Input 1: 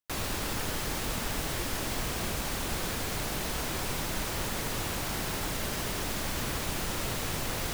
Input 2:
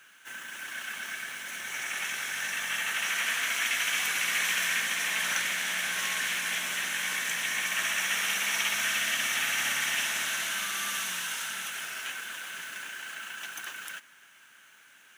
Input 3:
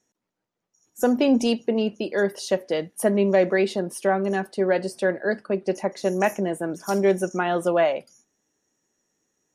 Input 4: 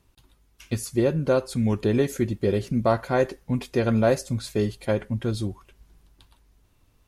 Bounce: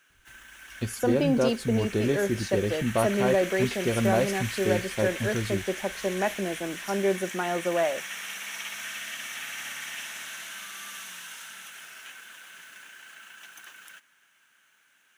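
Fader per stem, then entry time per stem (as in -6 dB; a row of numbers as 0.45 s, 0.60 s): mute, -8.0 dB, -5.5 dB, -4.0 dB; mute, 0.00 s, 0.00 s, 0.10 s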